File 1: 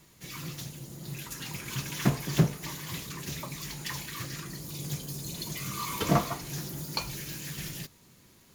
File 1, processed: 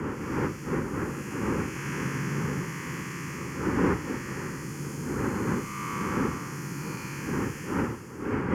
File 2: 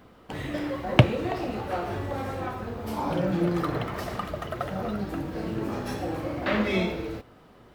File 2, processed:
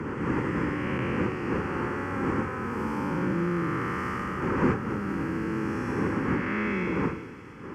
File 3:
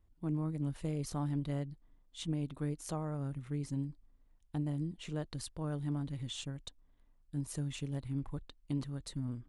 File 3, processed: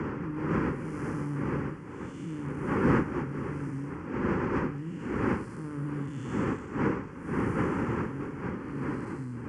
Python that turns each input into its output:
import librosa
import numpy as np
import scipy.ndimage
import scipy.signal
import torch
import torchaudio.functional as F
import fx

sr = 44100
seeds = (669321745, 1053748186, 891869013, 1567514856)

p1 = fx.spec_blur(x, sr, span_ms=385.0)
p2 = fx.dmg_wind(p1, sr, seeds[0], corner_hz=450.0, level_db=-30.0)
p3 = scipy.signal.sosfilt(scipy.signal.butter(2, 70.0, 'highpass', fs=sr, output='sos'), p2)
p4 = fx.low_shelf(p3, sr, hz=190.0, db=-9.0)
p5 = fx.hum_notches(p4, sr, base_hz=50, count=3)
p6 = fx.rider(p5, sr, range_db=4, speed_s=0.5)
p7 = p5 + F.gain(torch.from_numpy(p6), 0.5).numpy()
p8 = fx.air_absorb(p7, sr, metres=64.0)
p9 = fx.fixed_phaser(p8, sr, hz=1600.0, stages=4)
p10 = p9 + fx.echo_wet_highpass(p9, sr, ms=218, feedback_pct=69, hz=3900.0, wet_db=-13.5, dry=0)
y = fx.band_squash(p10, sr, depth_pct=40)